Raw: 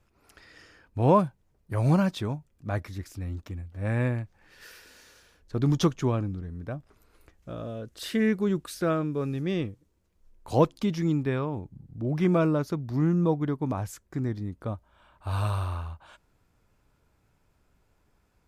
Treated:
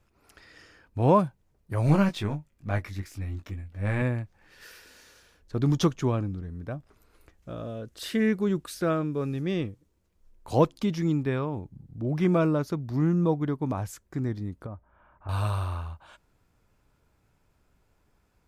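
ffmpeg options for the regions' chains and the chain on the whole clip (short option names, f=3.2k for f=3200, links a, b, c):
-filter_complex "[0:a]asettb=1/sr,asplit=3[a][b][c];[a]atrim=end=1.864[d];[b]atrim=start=1.86:end=4.02,asetpts=PTS-STARTPTS,afade=t=in:d=0.004:c=qsin,afade=t=out:st=2.156:d=0.004:c=qsin,aeval=exprs='if(lt(val(0),0),0.708*val(0),val(0))':c=same,equalizer=f=2.2k:t=o:w=0.86:g=5.5,asplit=2[e][f];[f]adelay=20,volume=-5.5dB[g];[e][g]amix=inputs=2:normalize=0,atrim=end_sample=95256[h];[c]atrim=start=4.016[i];[d][h]acrossfade=d=0.004:c1=hsin:c2=qsin[j];[j][i]acrossfade=d=0.004:c1=qsin:c2=hsin,asettb=1/sr,asplit=3[k][l][m];[k]atrim=end=14.664[n];[l]atrim=start=14.66:end=15.29,asetpts=PTS-STARTPTS,afade=t=in:d=0.004:c=qsin,afade=t=out:st=0.626:d=0.004:c=qsin,acompressor=threshold=-34dB:ratio=6:attack=3.2:release=140:knee=1:detection=peak,lowpass=f=2k:w=0.5412,lowpass=f=2k:w=1.3066[o];[m]atrim=start=15.286[p];[n][o]acrossfade=d=0.004:c1=hsin:c2=qsin[q];[q][p]acrossfade=d=0.004:c1=qsin:c2=hsin"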